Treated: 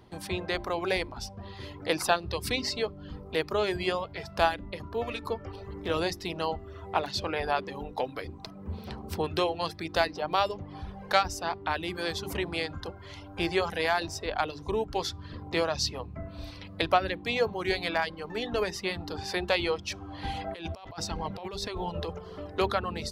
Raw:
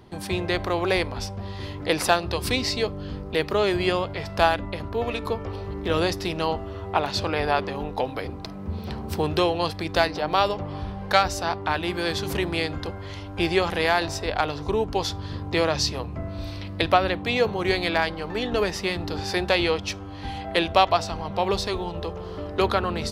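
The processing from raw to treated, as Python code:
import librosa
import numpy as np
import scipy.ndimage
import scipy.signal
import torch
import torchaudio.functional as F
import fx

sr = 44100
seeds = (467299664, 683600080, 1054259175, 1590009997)

y = fx.dereverb_blind(x, sr, rt60_s=0.73)
y = fx.hum_notches(y, sr, base_hz=50, count=8)
y = fx.over_compress(y, sr, threshold_db=-32.0, ratio=-1.0, at=(19.89, 22.19))
y = y * 10.0 ** (-4.5 / 20.0)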